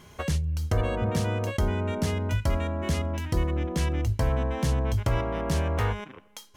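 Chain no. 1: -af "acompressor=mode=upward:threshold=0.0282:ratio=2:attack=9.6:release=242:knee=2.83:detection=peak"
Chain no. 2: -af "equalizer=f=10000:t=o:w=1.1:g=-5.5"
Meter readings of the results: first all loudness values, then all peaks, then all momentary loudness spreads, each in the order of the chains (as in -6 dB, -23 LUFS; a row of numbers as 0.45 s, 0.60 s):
-28.0 LUFS, -28.0 LUFS; -15.5 dBFS, -15.5 dBFS; 3 LU, 3 LU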